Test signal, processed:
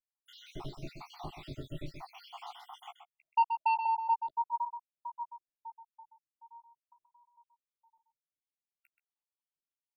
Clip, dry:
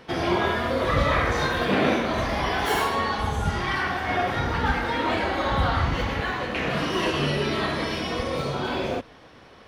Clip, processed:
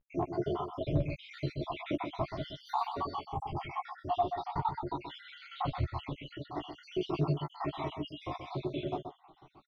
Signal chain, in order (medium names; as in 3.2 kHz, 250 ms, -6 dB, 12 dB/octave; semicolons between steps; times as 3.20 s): random holes in the spectrogram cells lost 77%; treble shelf 8.1 kHz +4 dB; static phaser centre 330 Hz, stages 8; vibrato 0.46 Hz 56 cents; overload inside the chain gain 20 dB; distance through air 330 m; doubling 14 ms -8 dB; echo from a far wall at 22 m, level -8 dB; trim -1 dB